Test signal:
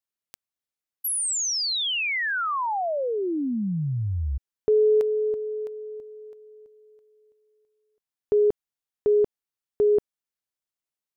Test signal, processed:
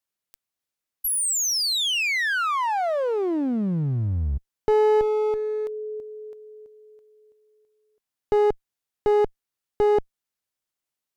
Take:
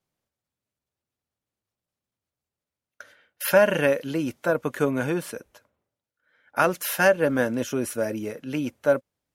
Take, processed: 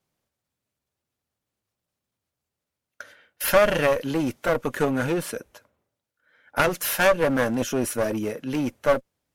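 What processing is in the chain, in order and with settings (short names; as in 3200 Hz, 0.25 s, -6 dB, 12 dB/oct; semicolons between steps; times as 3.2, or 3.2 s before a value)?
one-sided clip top -29 dBFS; gain +4 dB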